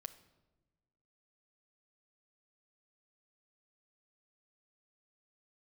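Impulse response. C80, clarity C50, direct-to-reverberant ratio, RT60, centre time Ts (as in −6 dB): 16.5 dB, 14.5 dB, 8.5 dB, 1.1 s, 6 ms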